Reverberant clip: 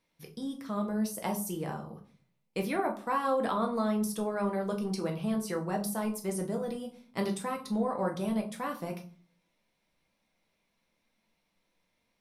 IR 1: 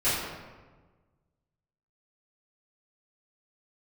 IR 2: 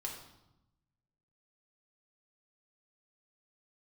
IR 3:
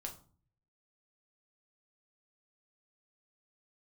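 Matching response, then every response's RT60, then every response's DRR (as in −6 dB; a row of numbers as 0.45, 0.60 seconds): 3; 1.3, 0.90, 0.45 seconds; −15.0, −1.5, 1.5 decibels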